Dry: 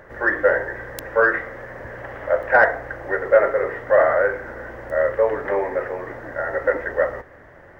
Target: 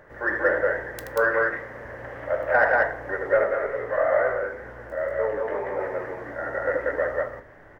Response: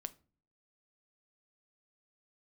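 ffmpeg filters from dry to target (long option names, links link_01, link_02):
-filter_complex "[0:a]aecho=1:1:78.72|186.6:0.398|0.891,asplit=3[link_01][link_02][link_03];[link_01]afade=type=out:start_time=3.43:duration=0.02[link_04];[link_02]flanger=delay=15.5:depth=6.9:speed=2.1,afade=type=in:start_time=3.43:duration=0.02,afade=type=out:start_time=5.79:duration=0.02[link_05];[link_03]afade=type=in:start_time=5.79:duration=0.02[link_06];[link_04][link_05][link_06]amix=inputs=3:normalize=0[link_07];[1:a]atrim=start_sample=2205[link_08];[link_07][link_08]afir=irnorm=-1:irlink=0,volume=-2.5dB"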